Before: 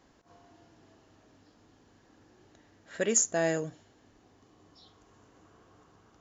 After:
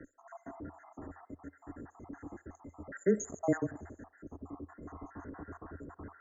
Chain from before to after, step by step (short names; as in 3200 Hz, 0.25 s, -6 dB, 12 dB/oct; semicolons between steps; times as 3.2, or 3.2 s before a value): random spectral dropouts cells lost 64%; bell 100 Hz +6 dB 0.23 oct; small resonant body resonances 300/1400/3100 Hz, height 7 dB; frequency shift -17 Hz; brick-wall FIR band-stop 2100–6200 Hz; in parallel at -0.5 dB: negative-ratio compressor -56 dBFS, ratio -0.5; on the sum: air absorption 130 m; on a send: band-limited delay 65 ms, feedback 56%, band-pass 1000 Hz, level -19 dB; on the sum: gain +2.5 dB